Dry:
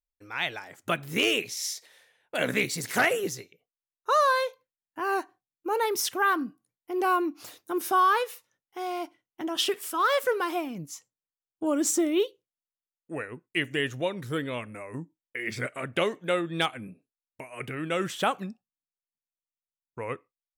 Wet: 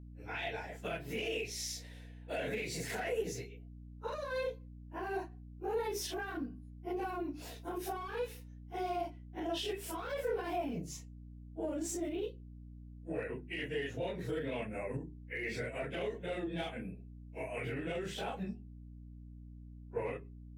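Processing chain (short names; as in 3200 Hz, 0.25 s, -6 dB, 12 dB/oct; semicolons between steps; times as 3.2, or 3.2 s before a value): phase scrambler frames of 0.1 s; high shelf 4800 Hz -9 dB; in parallel at -8 dB: one-sided clip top -30 dBFS; on the sum: compressor 2:1, threshold -35 dBFS, peak gain reduction 12 dB; limiter -28.5 dBFS, peak gain reduction 9 dB; bell 1200 Hz -11.5 dB 0.33 oct; notches 50/100/150/200/250/300/350/400 Hz; small resonant body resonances 460/680/2600 Hz, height 7 dB; hum 60 Hz, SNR 10 dB; gain -2 dB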